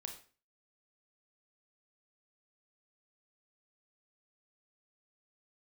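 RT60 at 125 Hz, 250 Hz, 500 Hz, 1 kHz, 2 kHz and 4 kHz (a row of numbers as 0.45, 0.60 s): 0.45, 0.45, 0.40, 0.40, 0.40, 0.35 s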